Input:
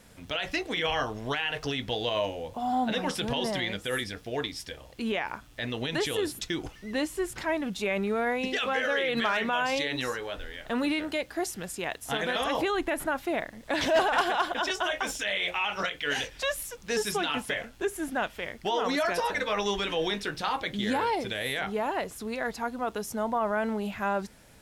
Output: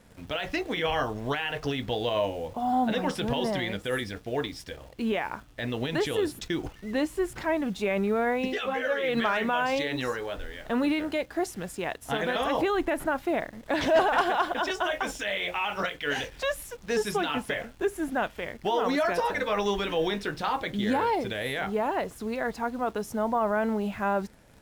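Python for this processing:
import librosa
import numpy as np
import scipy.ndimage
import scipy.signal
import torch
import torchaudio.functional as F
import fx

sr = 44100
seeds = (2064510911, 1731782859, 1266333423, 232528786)

p1 = fx.high_shelf(x, sr, hz=2100.0, db=-8.0)
p2 = fx.quant_dither(p1, sr, seeds[0], bits=8, dither='none')
p3 = p1 + (p2 * librosa.db_to_amplitude(-8.0))
y = fx.ensemble(p3, sr, at=(8.53, 9.02), fade=0.02)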